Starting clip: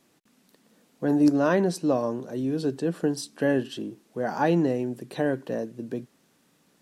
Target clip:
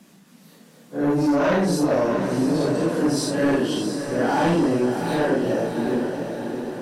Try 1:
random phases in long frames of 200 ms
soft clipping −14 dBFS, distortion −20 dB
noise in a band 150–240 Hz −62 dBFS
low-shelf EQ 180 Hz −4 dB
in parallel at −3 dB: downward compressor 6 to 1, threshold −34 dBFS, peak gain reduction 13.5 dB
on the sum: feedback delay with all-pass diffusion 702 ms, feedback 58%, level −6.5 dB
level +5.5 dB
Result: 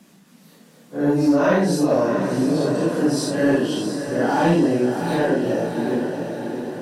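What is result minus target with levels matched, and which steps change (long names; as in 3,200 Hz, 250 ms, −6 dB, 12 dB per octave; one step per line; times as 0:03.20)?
soft clipping: distortion −9 dB
change: soft clipping −22 dBFS, distortion −11 dB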